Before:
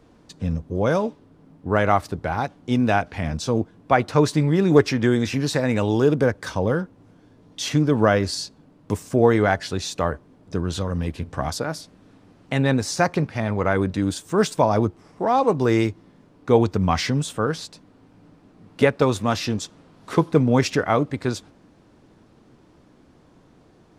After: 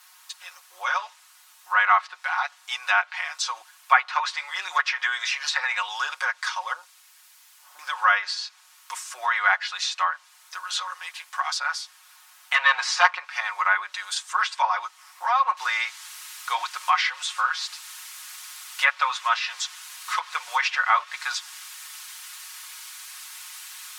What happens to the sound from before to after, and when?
6.73–7.79 Bessel low-pass 630 Hz, order 8
12.54–13.14 sample leveller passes 2
15.57 noise floor step -59 dB -45 dB
whole clip: steep high-pass 990 Hz 36 dB/oct; treble ducked by the level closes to 2900 Hz, closed at -25 dBFS; comb 5.5 ms, depth 84%; gain +4.5 dB

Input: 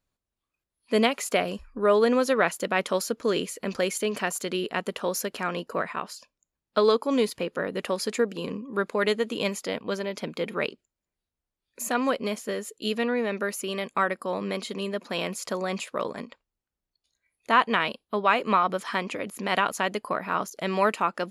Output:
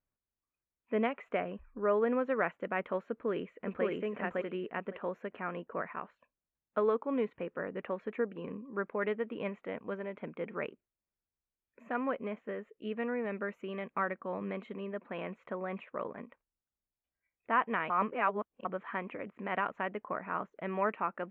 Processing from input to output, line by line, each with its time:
3.11–3.85 echo throw 0.56 s, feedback 15%, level -0.5 dB
13.25–14.76 tone controls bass +3 dB, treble +10 dB
17.9–18.65 reverse
whole clip: inverse Chebyshev low-pass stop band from 4500 Hz, stop band 40 dB; gain -8.5 dB

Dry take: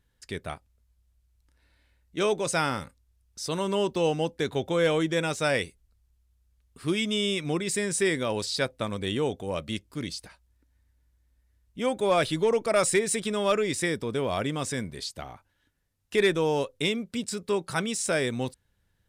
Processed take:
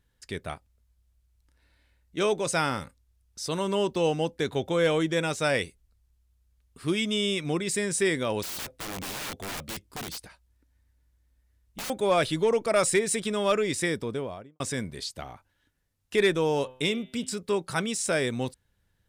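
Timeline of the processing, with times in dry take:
8.43–11.9 wrapped overs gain 30.5 dB
13.94–14.6 studio fade out
16.48–17.33 de-hum 128 Hz, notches 30

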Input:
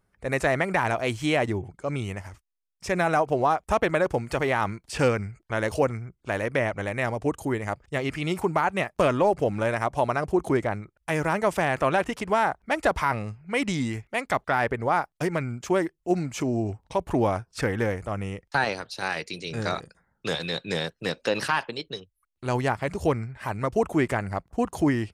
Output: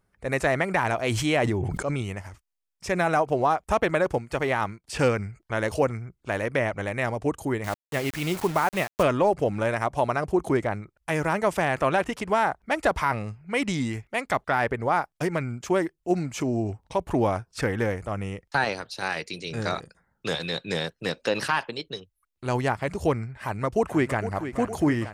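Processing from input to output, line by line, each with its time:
0.99–2.02 sustainer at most 22 dB/s
4.18–4.87 upward expander, over -45 dBFS
7.64–9.03 requantised 6-bit, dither none
23.41–24.3 echo throw 0.46 s, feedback 70%, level -10.5 dB

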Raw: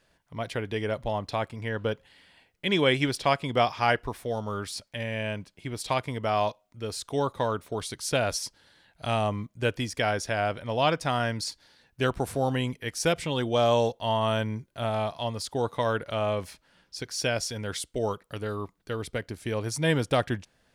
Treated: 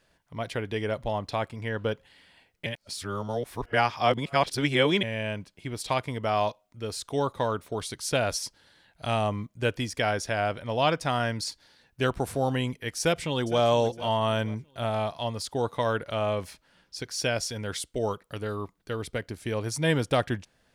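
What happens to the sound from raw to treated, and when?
2.66–5.03 reverse
13–13.62 echo throw 0.46 s, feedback 35%, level -15 dB

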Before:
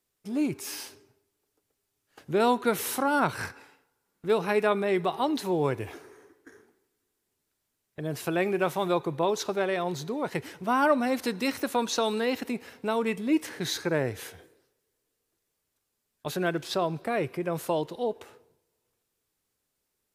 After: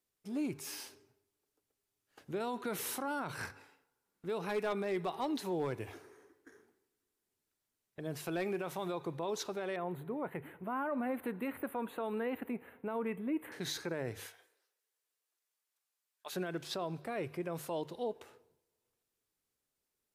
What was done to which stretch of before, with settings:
4.41–8.59 overloaded stage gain 19 dB
9.76–13.52 Butterworth band-stop 5500 Hz, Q 0.57
14.26–16.33 HPF 830 Hz
whole clip: notches 50/100/150 Hz; limiter -21 dBFS; gain -7 dB

